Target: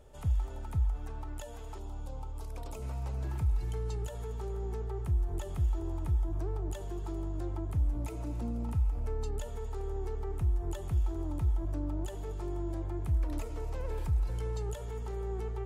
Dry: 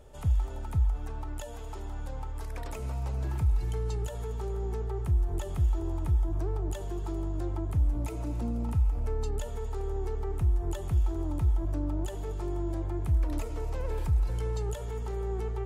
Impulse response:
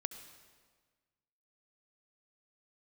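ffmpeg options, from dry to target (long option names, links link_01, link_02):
-filter_complex "[0:a]asettb=1/sr,asplit=3[link_01][link_02][link_03];[link_01]atrim=end=1.784[link_04];[link_02]atrim=start=1.78:end=2.82,asetpts=PTS-STARTPTS,afade=type=in:duration=0.004:curve=qsin,afade=type=out:start_time=1.036:duration=0.004:curve=qsin,equalizer=frequency=1800:width_type=o:width=0.62:gain=-13[link_05];[link_03]atrim=start=2.816[link_06];[link_04][link_05]acrossfade=duration=0.004:curve1=hsin:curve2=qsin[link_07];[link_07][link_06]acrossfade=duration=0.004:curve1=qsin:curve2=hsin,volume=-3.5dB"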